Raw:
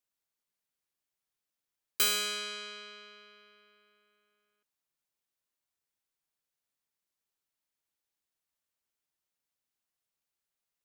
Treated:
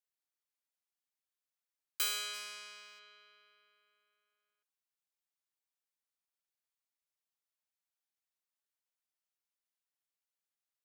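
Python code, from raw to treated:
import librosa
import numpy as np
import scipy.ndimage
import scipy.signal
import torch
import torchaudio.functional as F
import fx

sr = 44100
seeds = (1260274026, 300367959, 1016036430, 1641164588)

y = fx.envelope_flatten(x, sr, power=0.6, at=(2.33, 2.98), fade=0.02)
y = scipy.signal.sosfilt(scipy.signal.butter(2, 590.0, 'highpass', fs=sr, output='sos'), y)
y = y * 10.0 ** (-6.5 / 20.0)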